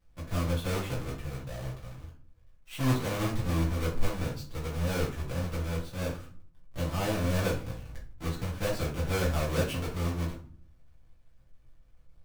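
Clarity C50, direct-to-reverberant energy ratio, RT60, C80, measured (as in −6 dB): 7.5 dB, −6.0 dB, 0.50 s, 13.0 dB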